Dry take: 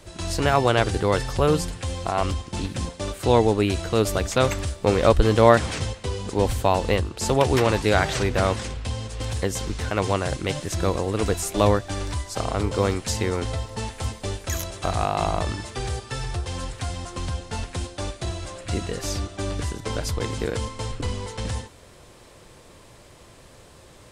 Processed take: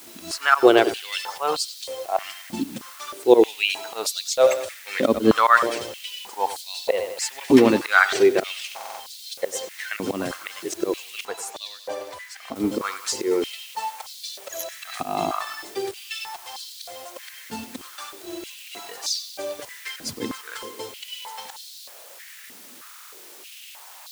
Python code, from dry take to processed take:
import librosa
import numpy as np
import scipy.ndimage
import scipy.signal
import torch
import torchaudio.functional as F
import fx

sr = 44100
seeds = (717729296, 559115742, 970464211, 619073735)

p1 = fx.bin_expand(x, sr, power=1.5)
p2 = p1 + fx.echo_bbd(p1, sr, ms=94, stages=4096, feedback_pct=47, wet_db=-14.5, dry=0)
p3 = fx.auto_swell(p2, sr, attack_ms=107.0)
p4 = fx.quant_dither(p3, sr, seeds[0], bits=6, dither='triangular')
p5 = p3 + (p4 * 10.0 ** (-11.0 / 20.0))
p6 = fx.high_shelf(p5, sr, hz=4000.0, db=-8.5, at=(11.25, 12.56))
p7 = fx.buffer_glitch(p6, sr, at_s=(8.67, 22.88), block=2048, repeats=6)
p8 = fx.filter_held_highpass(p7, sr, hz=3.2, low_hz=250.0, high_hz=4100.0)
y = p8 * 10.0 ** (2.0 / 20.0)